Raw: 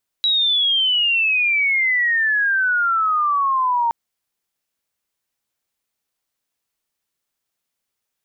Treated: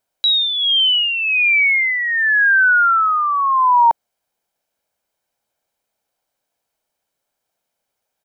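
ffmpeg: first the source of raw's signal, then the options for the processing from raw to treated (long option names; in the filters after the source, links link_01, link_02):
-f lavfi -i "aevalsrc='pow(10,(-14.5-1*t/3.67)/20)*sin(2*PI*3900*3.67/log(920/3900)*(exp(log(920/3900)*t/3.67)-1))':duration=3.67:sample_rate=44100"
-af "equalizer=frequency=540:width_type=o:width=1.9:gain=11.5,aecho=1:1:1.3:0.38"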